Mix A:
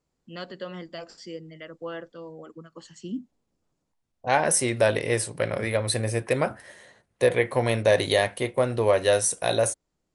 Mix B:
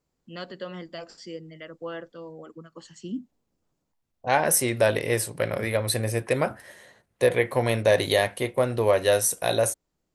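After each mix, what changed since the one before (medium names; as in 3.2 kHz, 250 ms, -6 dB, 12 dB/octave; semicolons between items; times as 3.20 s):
master: remove brick-wall FIR low-pass 11 kHz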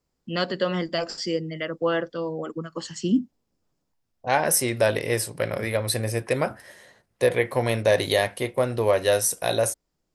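first voice +11.5 dB; master: add peaking EQ 5.1 kHz +5.5 dB 0.23 oct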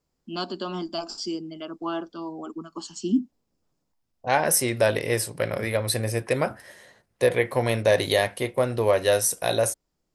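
first voice: add static phaser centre 510 Hz, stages 6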